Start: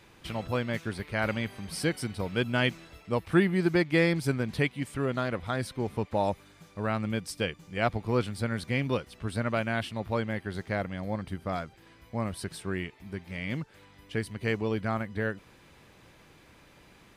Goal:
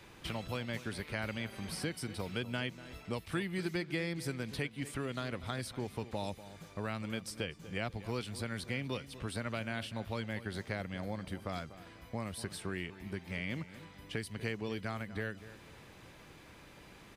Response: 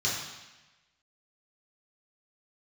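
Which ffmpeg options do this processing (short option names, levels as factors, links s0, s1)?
-filter_complex "[0:a]acrossover=split=280|2400[s0][s1][s2];[s0]acompressor=threshold=0.00794:ratio=4[s3];[s1]acompressor=threshold=0.00794:ratio=4[s4];[s2]acompressor=threshold=0.00631:ratio=4[s5];[s3][s4][s5]amix=inputs=3:normalize=0,asplit=2[s6][s7];[s7]adelay=243,lowpass=f=1900:p=1,volume=0.2,asplit=2[s8][s9];[s9]adelay=243,lowpass=f=1900:p=1,volume=0.34,asplit=2[s10][s11];[s11]adelay=243,lowpass=f=1900:p=1,volume=0.34[s12];[s8][s10][s12]amix=inputs=3:normalize=0[s13];[s6][s13]amix=inputs=2:normalize=0,volume=1.12"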